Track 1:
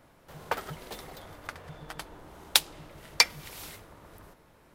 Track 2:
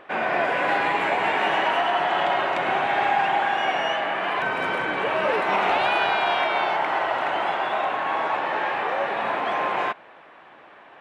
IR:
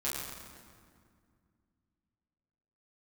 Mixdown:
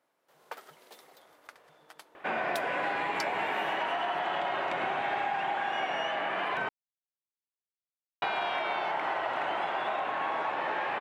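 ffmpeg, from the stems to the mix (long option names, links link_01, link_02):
-filter_complex "[0:a]highpass=380,dynaudnorm=framelen=290:gausssize=3:maxgain=5dB,volume=-15dB[link_01];[1:a]adelay=2150,volume=-3.5dB,asplit=3[link_02][link_03][link_04];[link_02]atrim=end=6.69,asetpts=PTS-STARTPTS,afade=type=out:start_time=6.686:duration=0.004:curve=hsin[link_05];[link_03]atrim=start=6.69:end=8.22,asetpts=PTS-STARTPTS,volume=0[link_06];[link_04]atrim=start=8.22,asetpts=PTS-STARTPTS,afade=type=in:duration=0.004:curve=hsin[link_07];[link_05][link_06][link_07]concat=n=3:v=0:a=1[link_08];[link_01][link_08]amix=inputs=2:normalize=0,acompressor=threshold=-28dB:ratio=6"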